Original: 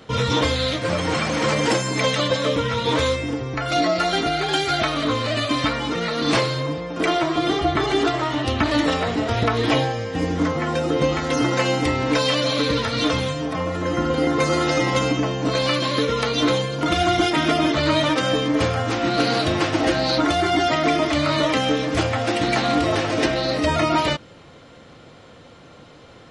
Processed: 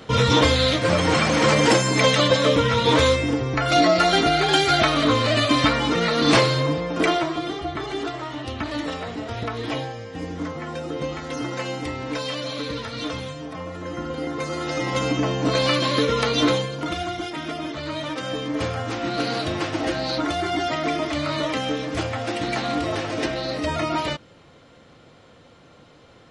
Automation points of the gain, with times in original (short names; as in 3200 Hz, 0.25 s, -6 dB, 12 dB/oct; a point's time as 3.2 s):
6.95 s +3 dB
7.53 s -8.5 dB
14.55 s -8.5 dB
15.31 s +0.5 dB
16.45 s +0.5 dB
17.17 s -11 dB
17.91 s -11 dB
18.67 s -5 dB